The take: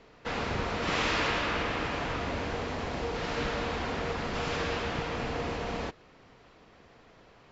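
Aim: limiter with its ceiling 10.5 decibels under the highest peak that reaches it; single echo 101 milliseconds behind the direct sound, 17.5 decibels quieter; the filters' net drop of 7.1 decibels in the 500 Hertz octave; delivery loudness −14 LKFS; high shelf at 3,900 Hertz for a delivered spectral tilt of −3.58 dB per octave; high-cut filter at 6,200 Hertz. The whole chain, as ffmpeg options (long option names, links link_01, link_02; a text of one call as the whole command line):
ffmpeg -i in.wav -af "lowpass=6200,equalizer=frequency=500:width_type=o:gain=-8.5,highshelf=frequency=3900:gain=-7.5,alimiter=level_in=6dB:limit=-24dB:level=0:latency=1,volume=-6dB,aecho=1:1:101:0.133,volume=25dB" out.wav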